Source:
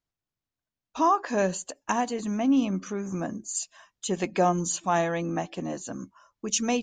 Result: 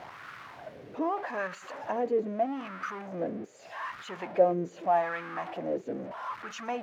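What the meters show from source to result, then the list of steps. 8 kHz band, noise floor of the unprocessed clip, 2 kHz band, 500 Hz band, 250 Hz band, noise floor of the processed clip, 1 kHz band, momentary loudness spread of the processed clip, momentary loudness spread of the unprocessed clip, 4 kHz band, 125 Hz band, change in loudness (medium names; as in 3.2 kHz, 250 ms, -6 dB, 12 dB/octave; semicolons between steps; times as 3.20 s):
under -20 dB, under -85 dBFS, -2.0 dB, -0.5 dB, -9.5 dB, -50 dBFS, -4.0 dB, 17 LU, 13 LU, -11.0 dB, -10.5 dB, -4.5 dB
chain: jump at every zero crossing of -26 dBFS; graphic EQ 125/1000/2000/8000 Hz +7/-5/+6/-5 dB; wah-wah 0.81 Hz 420–1300 Hz, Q 4.3; trim +4.5 dB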